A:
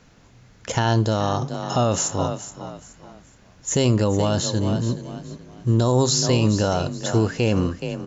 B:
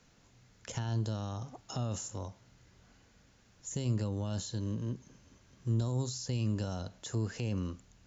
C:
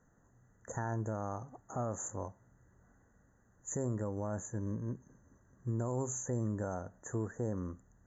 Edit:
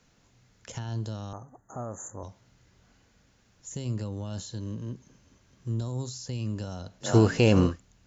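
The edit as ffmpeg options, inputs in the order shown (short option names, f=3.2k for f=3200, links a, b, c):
-filter_complex "[1:a]asplit=3[a][b][c];[a]atrim=end=1.332[d];[2:a]atrim=start=1.328:end=2.232[e];[b]atrim=start=2.228:end=7.16[f];[0:a]atrim=start=7:end=7.8[g];[c]atrim=start=7.64[h];[d][e]acrossfade=d=0.004:c1=hsin:c2=hsin[i];[i][f]acrossfade=d=0.004:c1=hsin:c2=hsin[j];[j][g]acrossfade=d=0.16:c1=tri:c2=tri[k];[k][h]acrossfade=d=0.16:c1=tri:c2=tri"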